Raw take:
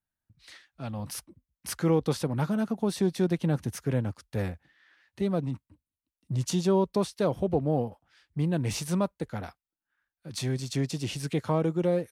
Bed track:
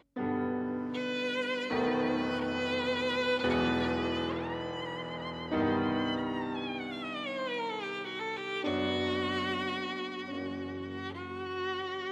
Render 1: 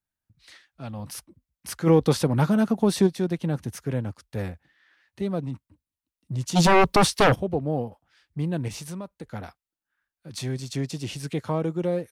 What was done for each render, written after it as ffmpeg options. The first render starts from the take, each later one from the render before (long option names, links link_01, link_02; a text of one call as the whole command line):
ffmpeg -i in.wav -filter_complex "[0:a]asplit=3[link_01][link_02][link_03];[link_01]afade=type=out:start_time=1.86:duration=0.02[link_04];[link_02]acontrast=78,afade=type=in:start_time=1.86:duration=0.02,afade=type=out:start_time=3.06:duration=0.02[link_05];[link_03]afade=type=in:start_time=3.06:duration=0.02[link_06];[link_04][link_05][link_06]amix=inputs=3:normalize=0,asplit=3[link_07][link_08][link_09];[link_07]afade=type=out:start_time=6.55:duration=0.02[link_10];[link_08]aeval=exprs='0.224*sin(PI/2*3.98*val(0)/0.224)':channel_layout=same,afade=type=in:start_time=6.55:duration=0.02,afade=type=out:start_time=7.34:duration=0.02[link_11];[link_09]afade=type=in:start_time=7.34:duration=0.02[link_12];[link_10][link_11][link_12]amix=inputs=3:normalize=0,asettb=1/sr,asplit=3[link_13][link_14][link_15];[link_13]atrim=end=8.684[link_16];[link_14]atrim=start=8.68:end=9.3,asetpts=PTS-STARTPTS,afade=type=in:duration=0.004:curve=qsin,afade=type=out:start_time=0.616:duration=0.004:curve=qsin,acompressor=threshold=-35dB:ratio=2.5:attack=3.2:release=140:knee=1:detection=peak[link_17];[link_15]atrim=start=9.296[link_18];[link_16][link_17]acrossfade=duration=0.004:curve1=hsin:curve2=qsin[link_19];[link_19][link_18]acrossfade=duration=0.004:curve1=qsin:curve2=hsin" out.wav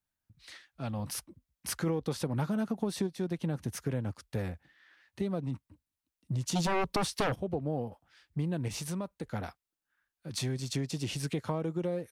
ffmpeg -i in.wav -af "acompressor=threshold=-29dB:ratio=6" out.wav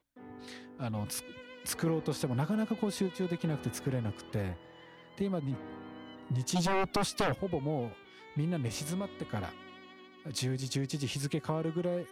ffmpeg -i in.wav -i bed.wav -filter_complex "[1:a]volume=-17dB[link_01];[0:a][link_01]amix=inputs=2:normalize=0" out.wav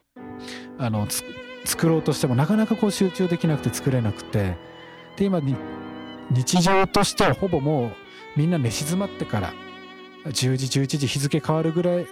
ffmpeg -i in.wav -af "volume=11.5dB" out.wav